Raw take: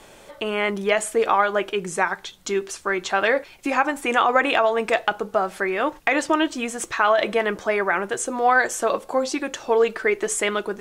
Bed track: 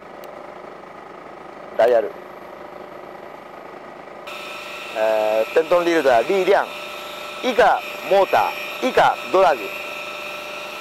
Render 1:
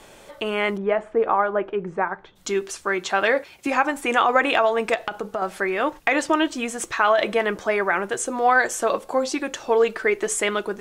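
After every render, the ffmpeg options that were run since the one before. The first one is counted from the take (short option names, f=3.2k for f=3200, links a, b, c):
-filter_complex "[0:a]asplit=3[a][b][c];[a]afade=t=out:st=0.76:d=0.02[d];[b]lowpass=1.3k,afade=t=in:st=0.76:d=0.02,afade=t=out:st=2.35:d=0.02[e];[c]afade=t=in:st=2.35:d=0.02[f];[d][e][f]amix=inputs=3:normalize=0,asettb=1/sr,asplit=3[g][h][i];[g]atrim=end=2.864[j];[h]atrim=start=2.86:end=3.67,asetpts=PTS-STARTPTS,afade=t=in:d=0.004:c=qsin,afade=t=out:st=0.806:d=0.004:c=qsin,highpass=63[k];[i]atrim=start=3.666[l];[j][k]acrossfade=d=0.004:c1=hsin:c2=qsin[m];[m][l]acrossfade=d=0.004:c1=qsin:c2=hsin,asettb=1/sr,asplit=3[n][o][p];[n]atrim=end=4.944[q];[o]atrim=start=4.94:end=5.42,asetpts=PTS-STARTPTS,afade=t=in:d=0.004:c=qsin,afade=t=out:st=0.476:d=0.004:c=qsin,acompressor=threshold=-22dB:ratio=6:attack=3.2:release=140:knee=1:detection=peak[r];[p]atrim=start=5.416[s];[q][r]acrossfade=d=0.004:c1=hsin:c2=qsin[t];[t][s]acrossfade=d=0.004:c1=qsin:c2=hsin"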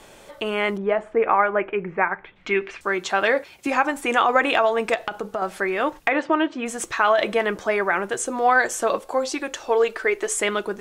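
-filter_complex "[0:a]asettb=1/sr,asplit=3[a][b][c];[a]atrim=end=1.164[d];[b]atrim=start=1.16:end=2.81,asetpts=PTS-STARTPTS,afade=t=in:d=0.004:c=qsin,afade=t=out:st=1.646:d=0.004:c=qsin,lowpass=f=2.3k:t=q:w=4.2[e];[c]atrim=start=2.806[f];[d][e]acrossfade=d=0.004:c1=hsin:c2=qsin[g];[g][f]acrossfade=d=0.004:c1=qsin:c2=hsin,asplit=3[h][i][j];[h]afade=t=out:st=6.08:d=0.02[k];[i]highpass=150,lowpass=2.5k,afade=t=in:st=6.08:d=0.02,afade=t=out:st=6.65:d=0.02[l];[j]afade=t=in:st=6.65:d=0.02[m];[k][l][m]amix=inputs=3:normalize=0,asettb=1/sr,asplit=3[n][o][p];[n]atrim=end=9.004[q];[o]atrim=start=9:end=10.37,asetpts=PTS-STARTPTS,afade=t=in:d=0.004:c=qsin,afade=t=out:st=1.366:d=0.004:c=qsin,equalizer=f=170:t=o:w=0.77:g=-13.5[r];[p]atrim=start=10.366[s];[q][r]acrossfade=d=0.004:c1=hsin:c2=qsin[t];[t][s]acrossfade=d=0.004:c1=qsin:c2=hsin"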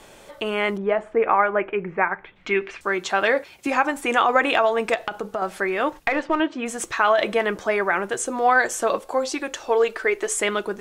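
-filter_complex "[0:a]asettb=1/sr,asplit=3[a][b][c];[a]atrim=end=5.994[d];[b]atrim=start=5.99:end=6.4,asetpts=PTS-STARTPTS,afade=t=in:d=0.004:c=qsin,afade=t=out:st=0.406:d=0.004:c=qsin,aeval=exprs='if(lt(val(0),0),0.708*val(0),val(0))':c=same[e];[c]atrim=start=6.396[f];[d][e]acrossfade=d=0.004:c1=hsin:c2=qsin[g];[g][f]acrossfade=d=0.004:c1=qsin:c2=hsin"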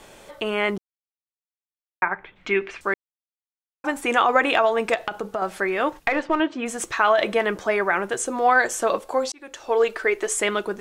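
-filter_complex "[0:a]asplit=6[a][b][c][d][e][f];[a]atrim=end=0.78,asetpts=PTS-STARTPTS,afade=t=out:st=0.776:d=0.004:c=hsin[g];[b]atrim=start=0.78:end=2.02,asetpts=PTS-STARTPTS,volume=0[h];[c]atrim=start=2.02:end=2.94,asetpts=PTS-STARTPTS,afade=t=in:d=0.004:c=hsin,afade=t=out:st=0.916:d=0.004:c=hsin[i];[d]atrim=start=2.94:end=3.84,asetpts=PTS-STARTPTS,volume=0[j];[e]atrim=start=3.84:end=9.32,asetpts=PTS-STARTPTS,afade=t=in:d=0.004:c=hsin,afade=t=out:st=5.476:d=0.004:c=hsin[k];[f]atrim=start=9.32,asetpts=PTS-STARTPTS,afade=t=in:d=0.49[l];[g][h][i][j][k][l]concat=n=6:v=0:a=1"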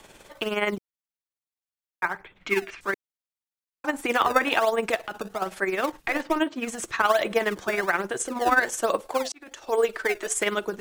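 -filter_complex "[0:a]acrossover=split=370|600|2700[a][b][c][d];[b]acrusher=samples=24:mix=1:aa=0.000001:lfo=1:lforange=38.4:lforate=1.2[e];[a][e][c][d]amix=inputs=4:normalize=0,tremolo=f=19:d=0.58"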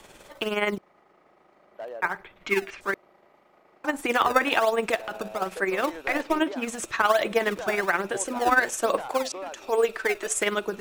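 -filter_complex "[1:a]volume=-22.5dB[a];[0:a][a]amix=inputs=2:normalize=0"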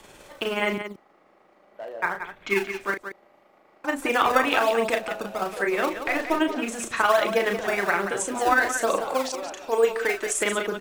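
-af "aecho=1:1:34.99|177.8:0.501|0.355"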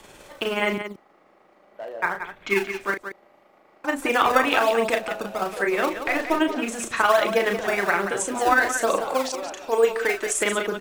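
-af "volume=1.5dB"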